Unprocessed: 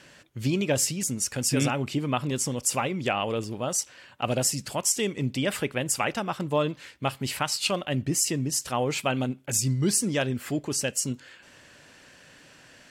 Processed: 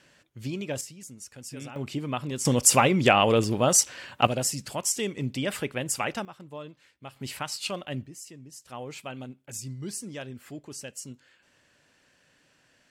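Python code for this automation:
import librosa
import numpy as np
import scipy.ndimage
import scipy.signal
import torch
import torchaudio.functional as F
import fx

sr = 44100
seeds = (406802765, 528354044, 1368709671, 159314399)

y = fx.gain(x, sr, db=fx.steps((0.0, -7.5), (0.81, -15.5), (1.76, -4.0), (2.45, 7.5), (4.27, -2.5), (6.25, -15.5), (7.16, -6.0), (8.06, -19.0), (8.69, -12.0)))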